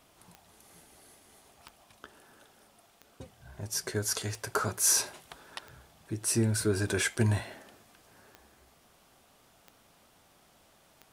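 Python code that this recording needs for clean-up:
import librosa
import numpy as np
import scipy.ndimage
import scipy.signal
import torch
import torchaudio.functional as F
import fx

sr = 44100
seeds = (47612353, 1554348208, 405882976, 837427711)

y = fx.fix_declip(x, sr, threshold_db=-15.0)
y = fx.fix_declick_ar(y, sr, threshold=10.0)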